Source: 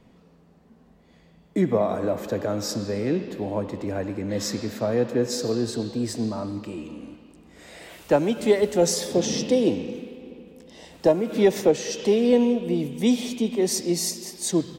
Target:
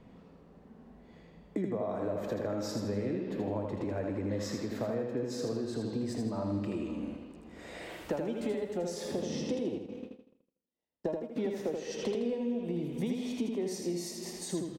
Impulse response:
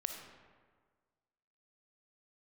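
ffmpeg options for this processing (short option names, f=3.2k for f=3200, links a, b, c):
-filter_complex "[0:a]acompressor=threshold=-31dB:ratio=12,asettb=1/sr,asplit=3[a][b][c];[a]atrim=end=9.784[d];[b]atrim=start=9.78:end=11.38,asetpts=PTS-STARTPTS,afade=t=in:d=0.004:c=qsin,afade=t=out:st=1.596:d=0.004:c=qsin,agate=range=-47dB:threshold=-35dB:ratio=16:detection=peak[e];[c]atrim=start=11.376[f];[d][e]acrossfade=d=0.004:c1=hsin:c2=qsin[g];[g][f]acrossfade=d=0.004:c1=qsin:c2=hsin,highshelf=f=3.4k:g=-10,asplit=2[h][i];[i]aecho=0:1:80|160|240|320|400:0.596|0.226|0.086|0.0327|0.0124[j];[h][j]amix=inputs=2:normalize=0"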